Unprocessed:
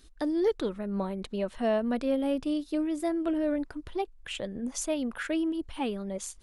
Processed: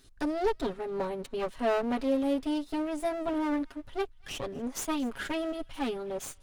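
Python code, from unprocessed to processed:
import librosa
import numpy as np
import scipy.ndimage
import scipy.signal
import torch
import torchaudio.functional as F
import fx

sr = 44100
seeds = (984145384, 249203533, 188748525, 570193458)

p1 = fx.lower_of_two(x, sr, delay_ms=7.3)
y = p1 + fx.echo_wet_highpass(p1, sr, ms=239, feedback_pct=32, hz=1600.0, wet_db=-22.5, dry=0)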